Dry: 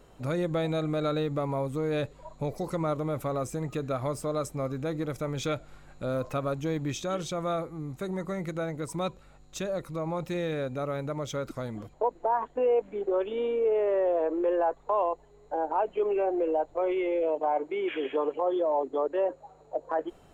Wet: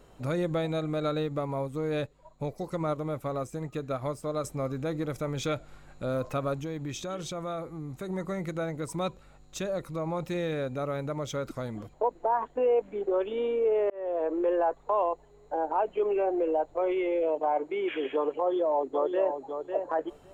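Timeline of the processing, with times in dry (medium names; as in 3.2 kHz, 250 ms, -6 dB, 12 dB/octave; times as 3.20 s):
0.54–4.44 s: upward expansion, over -47 dBFS
6.57–8.10 s: compression 2:1, threshold -34 dBFS
13.90–14.44 s: fade in equal-power
18.39–19.43 s: echo throw 550 ms, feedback 10%, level -7 dB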